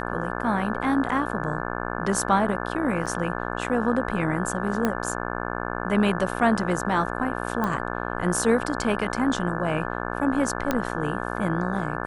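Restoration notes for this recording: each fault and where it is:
mains buzz 60 Hz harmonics 29 −30 dBFS
0:03.06–0:03.07: drop-out 6.2 ms
0:04.85: click −10 dBFS
0:07.64: click −14 dBFS
0:10.71: click −9 dBFS

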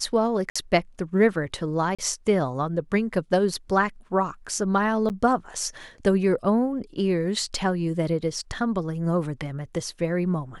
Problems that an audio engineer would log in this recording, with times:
0:00.50–0:00.56: drop-out 55 ms
0:01.95–0:01.99: drop-out 36 ms
0:05.09–0:05.10: drop-out 8.8 ms

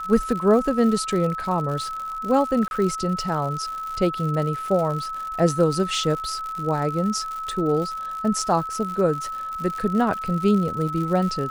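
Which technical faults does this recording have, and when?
surface crackle 120 per second −29 dBFS
whistle 1,300 Hz −28 dBFS
0:02.68–0:02.71: drop-out 31 ms

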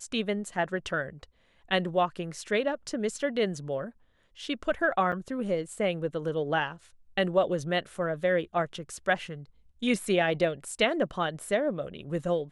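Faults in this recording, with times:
0:05.12–0:05.13: drop-out 5.4 ms

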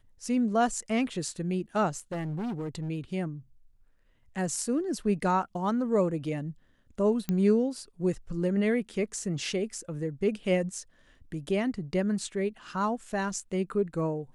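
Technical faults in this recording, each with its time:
0:01.96–0:02.90: clipping −30 dBFS
0:07.29: click −16 dBFS

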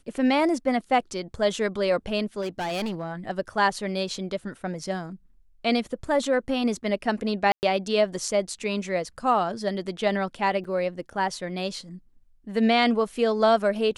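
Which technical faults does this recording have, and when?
0:02.41–0:03.13: clipping −26 dBFS
0:07.52–0:07.63: drop-out 109 ms
0:10.64–0:10.65: drop-out 5.4 ms

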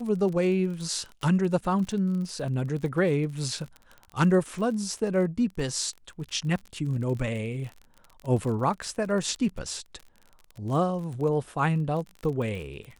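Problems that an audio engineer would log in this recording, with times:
surface crackle 33 per second −34 dBFS

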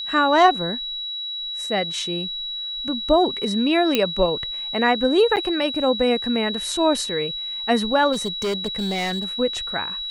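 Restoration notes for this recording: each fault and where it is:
whistle 3,900 Hz −27 dBFS
0:03.95: click −4 dBFS
0:05.36–0:05.37: drop-out 8.7 ms
0:08.12–0:09.25: clipping −20.5 dBFS

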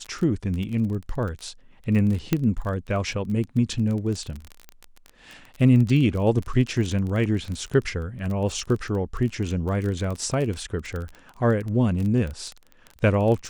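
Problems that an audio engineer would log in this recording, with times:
surface crackle 23 per second −28 dBFS
0:02.33: click −8 dBFS

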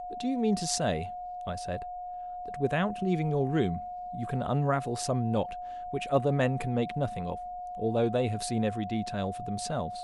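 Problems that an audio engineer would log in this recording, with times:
whistle 720 Hz −36 dBFS

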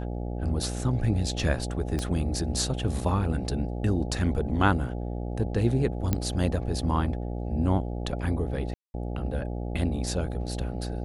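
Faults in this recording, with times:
mains buzz 60 Hz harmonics 14 −32 dBFS
0:01.99: click −18 dBFS
0:06.13: click −11 dBFS
0:08.74–0:08.94: drop-out 201 ms

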